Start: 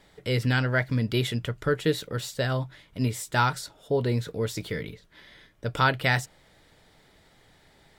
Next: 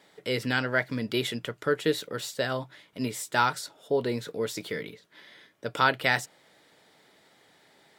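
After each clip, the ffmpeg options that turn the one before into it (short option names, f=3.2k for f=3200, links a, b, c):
-af "highpass=230"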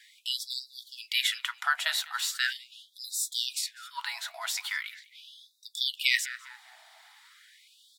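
-filter_complex "[0:a]asplit=2[a][b];[b]adelay=200,lowpass=f=4.7k:p=1,volume=-19dB,asplit=2[c][d];[d]adelay=200,lowpass=f=4.7k:p=1,volume=0.34,asplit=2[e][f];[f]adelay=200,lowpass=f=4.7k:p=1,volume=0.34[g];[a][c][e][g]amix=inputs=4:normalize=0,afftfilt=real='re*gte(b*sr/1024,610*pow(3600/610,0.5+0.5*sin(2*PI*0.4*pts/sr)))':imag='im*gte(b*sr/1024,610*pow(3600/610,0.5+0.5*sin(2*PI*0.4*pts/sr)))':win_size=1024:overlap=0.75,volume=6dB"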